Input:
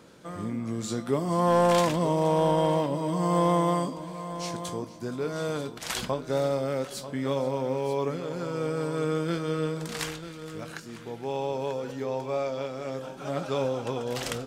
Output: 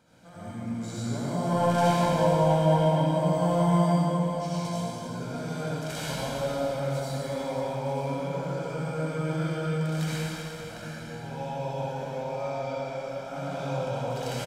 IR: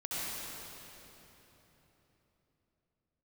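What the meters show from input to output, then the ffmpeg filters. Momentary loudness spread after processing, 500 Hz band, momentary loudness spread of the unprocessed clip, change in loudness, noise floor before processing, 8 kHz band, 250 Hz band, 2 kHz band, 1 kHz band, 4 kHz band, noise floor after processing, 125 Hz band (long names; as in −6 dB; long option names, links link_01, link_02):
12 LU, −1.0 dB, 13 LU, +0.5 dB, −43 dBFS, −2.0 dB, +1.0 dB, +0.5 dB, 0.0 dB, −1.0 dB, −40 dBFS, +4.5 dB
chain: -filter_complex "[0:a]aecho=1:1:1.3:0.59[link_01];[1:a]atrim=start_sample=2205[link_02];[link_01][link_02]afir=irnorm=-1:irlink=0,volume=-6.5dB"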